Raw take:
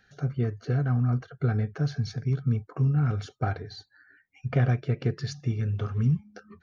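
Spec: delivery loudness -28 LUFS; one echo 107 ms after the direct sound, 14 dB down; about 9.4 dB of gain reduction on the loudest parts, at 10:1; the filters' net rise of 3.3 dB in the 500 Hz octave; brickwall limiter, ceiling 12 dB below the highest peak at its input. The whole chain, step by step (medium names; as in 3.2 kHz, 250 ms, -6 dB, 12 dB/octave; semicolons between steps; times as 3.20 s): peaking EQ 500 Hz +4 dB; compression 10:1, threshold -28 dBFS; peak limiter -31 dBFS; delay 107 ms -14 dB; trim +11.5 dB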